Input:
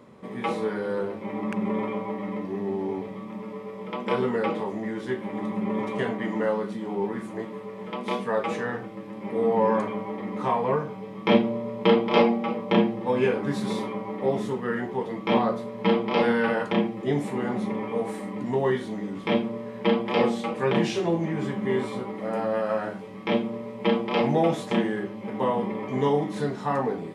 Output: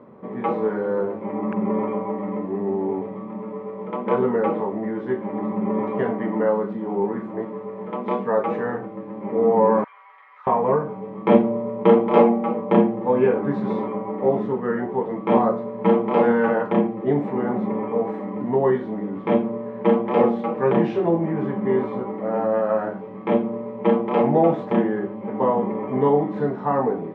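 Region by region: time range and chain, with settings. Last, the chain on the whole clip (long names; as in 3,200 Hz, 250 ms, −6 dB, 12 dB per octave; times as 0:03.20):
0:09.84–0:10.47: high-pass filter 1,400 Hz 24 dB per octave + downward compressor 2.5 to 1, threshold −45 dBFS
whole clip: low-pass filter 1,200 Hz 12 dB per octave; low-shelf EQ 98 Hz −12 dB; level +6 dB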